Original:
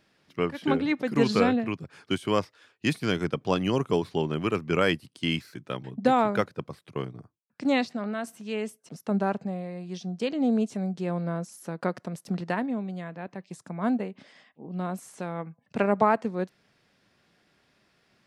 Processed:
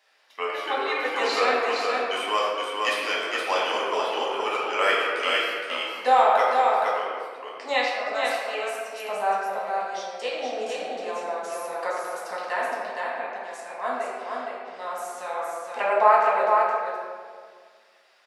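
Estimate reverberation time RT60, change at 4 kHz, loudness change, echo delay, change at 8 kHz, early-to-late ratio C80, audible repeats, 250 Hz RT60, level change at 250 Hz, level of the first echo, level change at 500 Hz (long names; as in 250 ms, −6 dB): 1.8 s, +7.0 dB, +3.5 dB, 467 ms, +6.0 dB, −1.5 dB, 1, 2.2 s, −15.5 dB, −3.5 dB, +3.0 dB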